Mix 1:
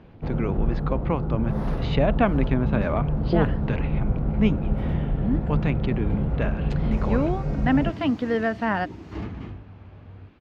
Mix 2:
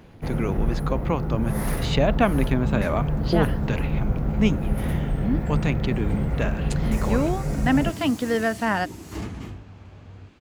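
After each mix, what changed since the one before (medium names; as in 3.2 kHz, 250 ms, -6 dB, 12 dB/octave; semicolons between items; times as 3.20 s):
first sound: add peaking EQ 2 kHz +10 dB 0.59 oct; master: remove distance through air 250 m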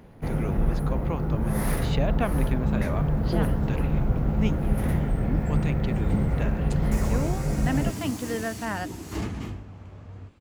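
speech -8.5 dB; reverb: on, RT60 1.3 s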